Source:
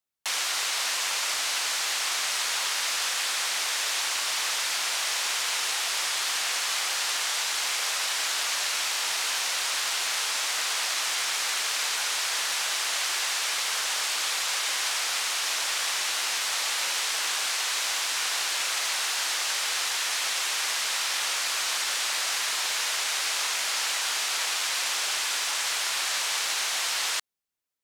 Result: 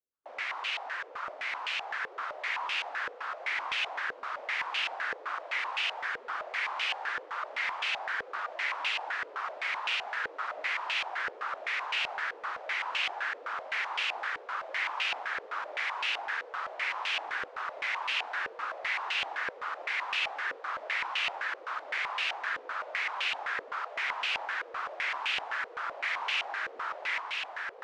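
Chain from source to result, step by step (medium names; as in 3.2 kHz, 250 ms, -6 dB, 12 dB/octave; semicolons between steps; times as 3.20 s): echo that smears into a reverb 1642 ms, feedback 57%, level -3 dB; spectral gate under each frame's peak -25 dB strong; step-sequenced low-pass 7.8 Hz 480–2700 Hz; trim -8.5 dB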